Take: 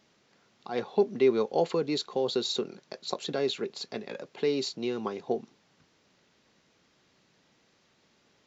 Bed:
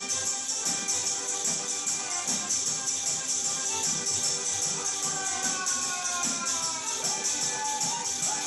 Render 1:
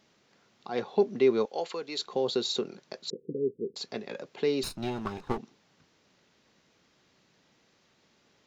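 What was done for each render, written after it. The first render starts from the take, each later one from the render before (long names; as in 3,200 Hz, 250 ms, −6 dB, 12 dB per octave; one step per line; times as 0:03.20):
0:01.45–0:01.99: high-pass filter 1,100 Hz 6 dB per octave
0:03.10–0:03.76: Chebyshev low-pass filter 500 Hz, order 8
0:04.63–0:05.38: lower of the sound and its delayed copy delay 0.76 ms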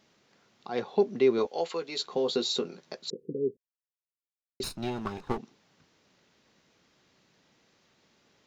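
0:01.37–0:02.95: double-tracking delay 12 ms −5 dB
0:03.57–0:04.60: silence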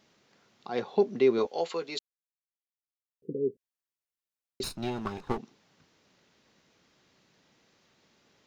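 0:01.99–0:03.22: silence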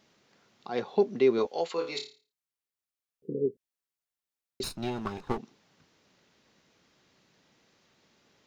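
0:01.75–0:03.46: flutter between parallel walls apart 4.8 metres, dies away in 0.35 s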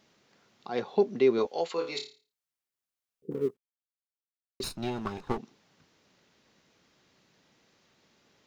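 0:03.31–0:04.63: mu-law and A-law mismatch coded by A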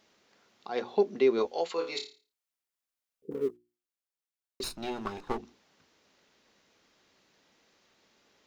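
parametric band 130 Hz −8.5 dB 1.2 octaves
mains-hum notches 60/120/180/240/300/360 Hz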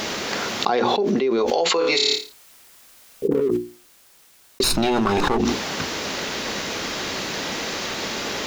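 envelope flattener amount 100%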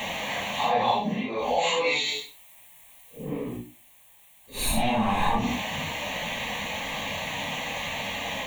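random phases in long frames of 200 ms
phaser with its sweep stopped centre 1,400 Hz, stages 6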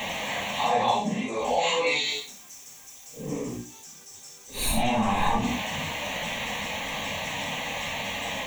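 mix in bed −18.5 dB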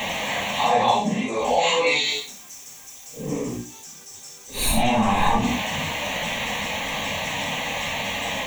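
level +4.5 dB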